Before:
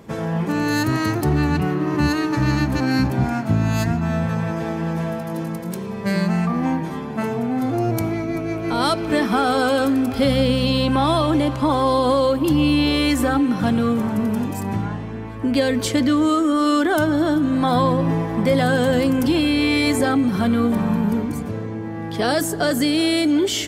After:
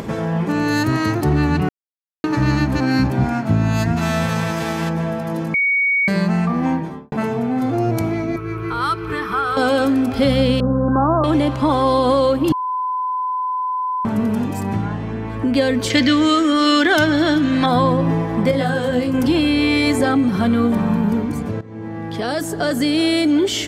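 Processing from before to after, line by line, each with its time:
0:01.69–0:02.24: silence
0:03.96–0:04.88: spectral envelope flattened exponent 0.6
0:05.54–0:06.08: beep over 2,240 Hz −15.5 dBFS
0:06.72–0:07.12: fade out and dull
0:08.36–0:09.57: drawn EQ curve 130 Hz 0 dB, 250 Hz −22 dB, 390 Hz +2 dB, 610 Hz −22 dB, 1,200 Hz +4 dB, 1,700 Hz −3 dB, 7,000 Hz −12 dB, 12,000 Hz −3 dB
0:10.60–0:11.24: Butterworth low-pass 1,600 Hz 96 dB per octave
0:12.52–0:14.05: beep over 1,010 Hz −22 dBFS
0:15.90–0:17.66: flat-topped bell 3,300 Hz +10 dB 2.3 octaves
0:18.51–0:19.14: micro pitch shift up and down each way 30 cents
0:21.61–0:23.02: fade in linear, from −16.5 dB
whole clip: high-shelf EQ 8,400 Hz −7.5 dB; upward compression, threshold −21 dBFS; level +2 dB

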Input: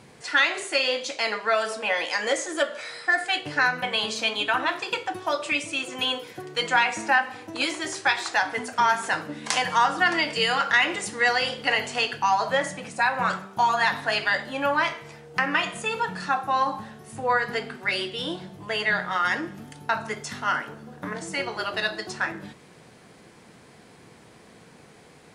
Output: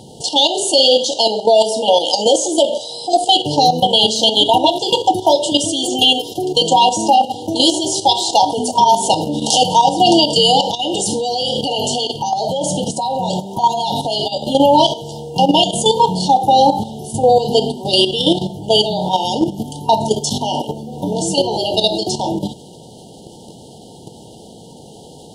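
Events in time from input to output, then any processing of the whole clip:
0:05.64–0:06.53: comb filter 2.9 ms, depth 52%
0:10.70–0:14.52: downward compressor 3 to 1, threshold −30 dBFS
whole clip: brick-wall band-stop 950–2,800 Hz; output level in coarse steps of 10 dB; boost into a limiter +22 dB; level −1 dB

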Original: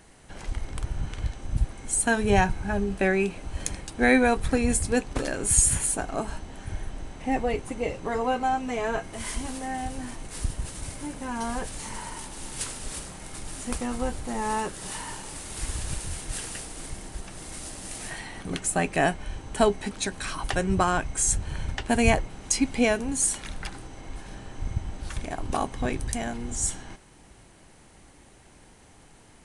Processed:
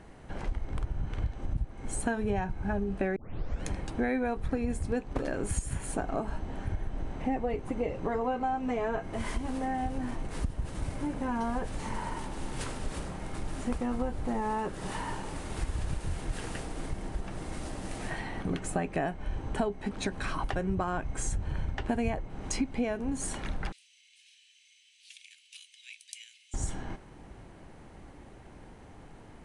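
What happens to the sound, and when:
0:03.16: tape start 0.49 s
0:23.72–0:26.54: Butterworth high-pass 2,500 Hz 48 dB per octave
whole clip: low-pass filter 1,200 Hz 6 dB per octave; downward compressor 6 to 1, threshold −32 dBFS; level +4.5 dB

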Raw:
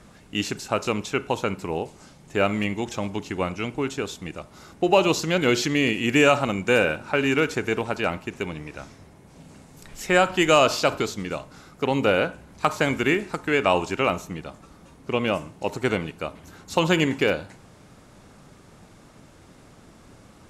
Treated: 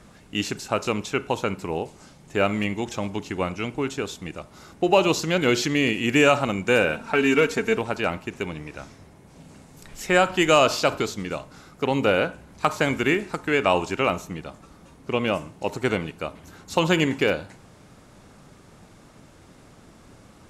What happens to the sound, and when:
0:06.92–0:07.77: comb filter 4.4 ms, depth 69%

